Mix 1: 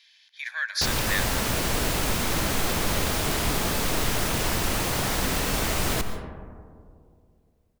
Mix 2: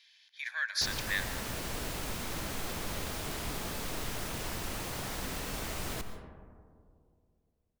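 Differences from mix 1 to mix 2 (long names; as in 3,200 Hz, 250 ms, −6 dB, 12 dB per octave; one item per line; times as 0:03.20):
speech −4.5 dB
background −12.0 dB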